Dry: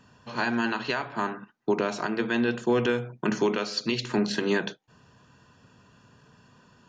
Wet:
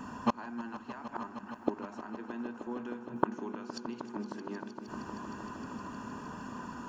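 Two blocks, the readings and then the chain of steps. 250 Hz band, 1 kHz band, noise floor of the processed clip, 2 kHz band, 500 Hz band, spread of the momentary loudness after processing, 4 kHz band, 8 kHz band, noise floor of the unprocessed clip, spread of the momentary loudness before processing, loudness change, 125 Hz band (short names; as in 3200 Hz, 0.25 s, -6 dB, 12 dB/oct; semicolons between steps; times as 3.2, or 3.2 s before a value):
-9.0 dB, -5.5 dB, -49 dBFS, -16.0 dB, -13.0 dB, 8 LU, -19.0 dB, -13.0 dB, -60 dBFS, 7 LU, -12.0 dB, -11.5 dB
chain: graphic EQ 125/250/500/1000/2000/4000 Hz -11/+9/-5/+7/-4/-11 dB; flipped gate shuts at -28 dBFS, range -31 dB; on a send: swelling echo 0.155 s, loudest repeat 5, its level -15.5 dB; on the sum: gain +12.5 dB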